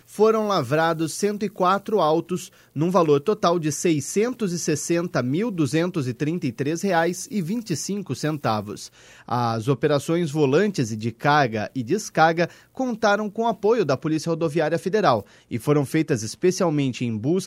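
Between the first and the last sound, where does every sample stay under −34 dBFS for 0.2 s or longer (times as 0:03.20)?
0:02.47–0:02.76
0:08.87–0:09.28
0:12.51–0:12.77
0:15.22–0:15.51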